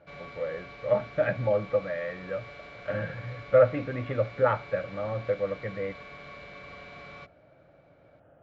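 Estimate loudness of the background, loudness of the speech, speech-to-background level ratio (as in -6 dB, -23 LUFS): -45.0 LUFS, -29.0 LUFS, 16.0 dB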